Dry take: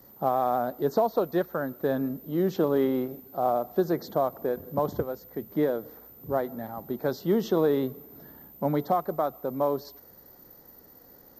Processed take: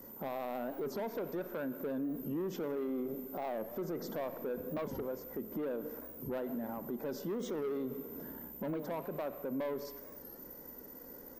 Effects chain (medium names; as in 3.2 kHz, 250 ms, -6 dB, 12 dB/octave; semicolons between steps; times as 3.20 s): in parallel at +1 dB: compression, threshold -38 dBFS, peak gain reduction 17.5 dB; on the sum: peaking EQ 4.1 kHz -15 dB 0.37 oct; comb 2 ms, depth 39%; saturation -21.5 dBFS, distortion -11 dB; fifteen-band graphic EQ 100 Hz -11 dB, 250 Hz +11 dB, 4 kHz +3 dB, 10 kHz +5 dB; Schroeder reverb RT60 1.5 s, combs from 30 ms, DRR 14.5 dB; peak limiter -25 dBFS, peak gain reduction 10.5 dB; warped record 45 rpm, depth 160 cents; trim -6 dB